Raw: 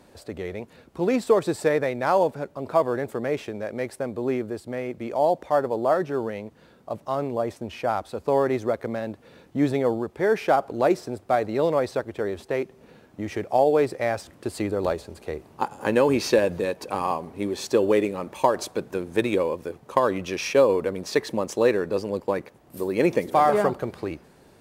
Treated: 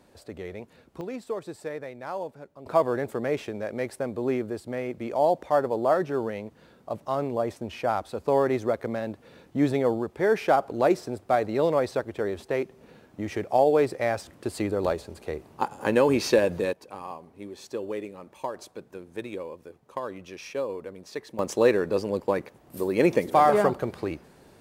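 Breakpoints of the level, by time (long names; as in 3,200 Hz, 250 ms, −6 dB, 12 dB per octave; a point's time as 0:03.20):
−5 dB
from 0:01.01 −13 dB
from 0:02.66 −1 dB
from 0:16.73 −12.5 dB
from 0:21.39 0 dB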